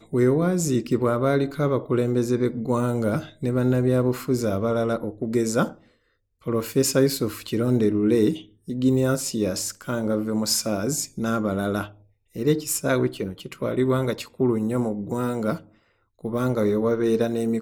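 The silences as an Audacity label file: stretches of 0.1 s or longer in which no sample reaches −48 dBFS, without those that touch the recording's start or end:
5.870000	6.420000	silence
8.510000	8.670000	silence
12.020000	12.340000	silence
15.740000	16.190000	silence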